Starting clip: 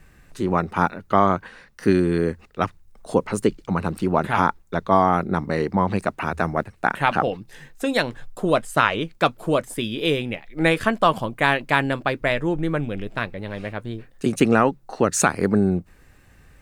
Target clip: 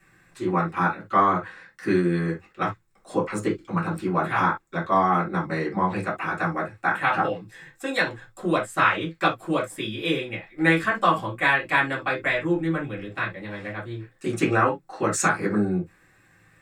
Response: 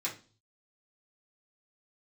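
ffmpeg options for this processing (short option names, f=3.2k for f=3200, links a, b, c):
-filter_complex "[0:a]equalizer=f=1.5k:w=1.5:g=4.5[a];[1:a]atrim=start_sample=2205,atrim=end_sample=3528[b];[a][b]afir=irnorm=-1:irlink=0,volume=-6.5dB"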